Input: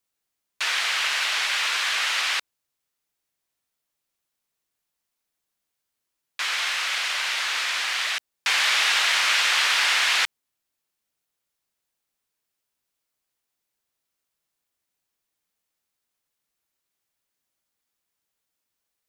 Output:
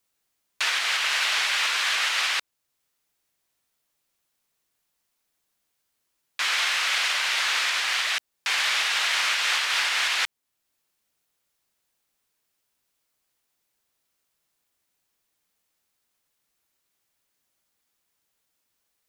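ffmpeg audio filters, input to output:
-af "alimiter=limit=0.112:level=0:latency=1:release=498,volume=1.78"

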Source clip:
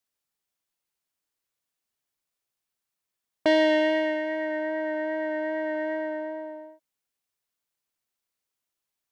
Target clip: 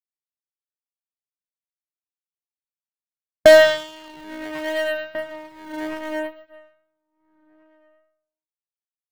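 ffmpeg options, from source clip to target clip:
-filter_complex "[0:a]afftfilt=real='re*pow(10,23/40*sin(2*PI*(0.69*log(max(b,1)*sr/1024/100)/log(2)-(-0.71)*(pts-256)/sr)))':imag='im*pow(10,23/40*sin(2*PI*(0.69*log(max(b,1)*sr/1024/100)/log(2)-(-0.71)*(pts-256)/sr)))':win_size=1024:overlap=0.75,asplit=2[s0][s1];[s1]acrusher=samples=10:mix=1:aa=0.000001:lfo=1:lforange=16:lforate=0.74,volume=0.501[s2];[s0][s2]amix=inputs=2:normalize=0,bass=f=250:g=4,treble=f=4000:g=-4,bandreject=f=60:t=h:w=6,bandreject=f=120:t=h:w=6,bandreject=f=180:t=h:w=6,bandreject=f=240:t=h:w=6,bandreject=f=300:t=h:w=6,asplit=2[s3][s4];[s4]adelay=1691,volume=0.398,highshelf=f=4000:g=-38[s5];[s3][s5]amix=inputs=2:normalize=0,aeval=exprs='0.841*(cos(1*acos(clip(val(0)/0.841,-1,1)))-cos(1*PI/2))+0.0668*(cos(2*acos(clip(val(0)/0.841,-1,1)))-cos(2*PI/2))+0.0668*(cos(4*acos(clip(val(0)/0.841,-1,1)))-cos(4*PI/2))+0.0106*(cos(6*acos(clip(val(0)/0.841,-1,1)))-cos(6*PI/2))+0.119*(cos(7*acos(clip(val(0)/0.841,-1,1)))-cos(7*PI/2))':c=same"

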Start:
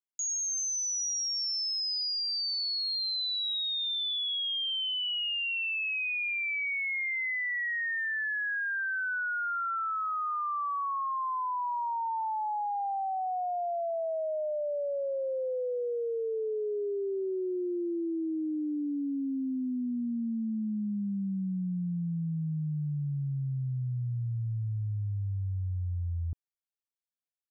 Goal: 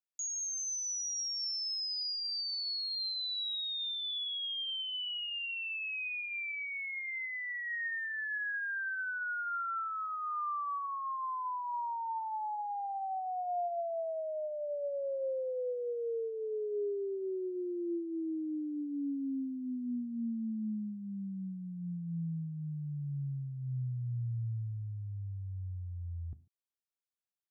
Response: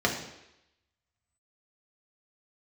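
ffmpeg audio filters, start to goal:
-filter_complex "[0:a]asplit=2[s0][s1];[1:a]atrim=start_sample=2205,atrim=end_sample=6615[s2];[s1][s2]afir=irnorm=-1:irlink=0,volume=0.0562[s3];[s0][s3]amix=inputs=2:normalize=0,volume=0.531"

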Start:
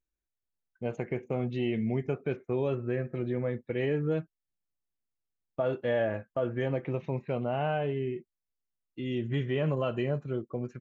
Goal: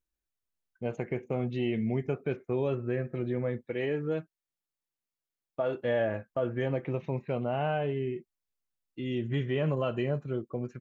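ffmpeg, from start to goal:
-filter_complex "[0:a]asettb=1/sr,asplit=3[s0][s1][s2];[s0]atrim=end=3.664[s3];[s1]atrim=start=3.66:end=5.75,asetpts=PTS-STARTPTS,afade=t=in:d=0.004:c=qsin,afade=t=out:st=2.086:d=0.004:c=qsin,lowshelf=f=150:g=-10.5[s4];[s2]atrim=start=5.746[s5];[s3][s4]acrossfade=d=0.004:c1=hsin:c2=qsin[s6];[s6][s5]acrossfade=d=0.004:c1=qsin:c2=hsin"

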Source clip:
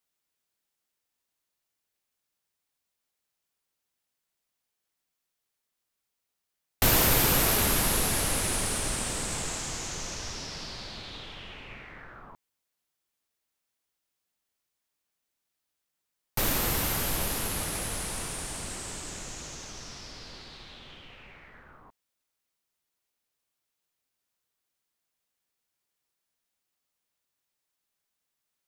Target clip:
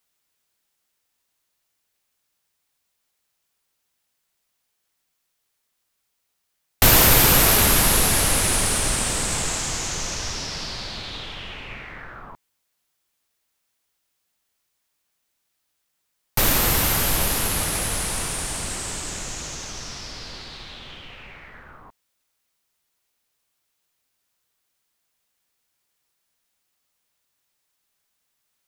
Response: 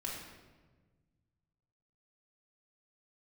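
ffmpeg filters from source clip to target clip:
-af "equalizer=f=310:t=o:w=2.3:g=-2.5,volume=2.66"

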